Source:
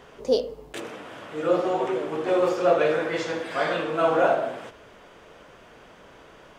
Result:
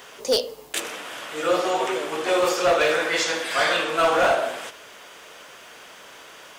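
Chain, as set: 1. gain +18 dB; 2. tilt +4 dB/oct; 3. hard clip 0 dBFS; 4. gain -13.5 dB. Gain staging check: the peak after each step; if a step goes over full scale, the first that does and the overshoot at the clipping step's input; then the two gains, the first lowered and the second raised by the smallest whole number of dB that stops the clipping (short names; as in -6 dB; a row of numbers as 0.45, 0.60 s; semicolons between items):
+9.5, +9.5, 0.0, -13.5 dBFS; step 1, 9.5 dB; step 1 +8 dB, step 4 -3.5 dB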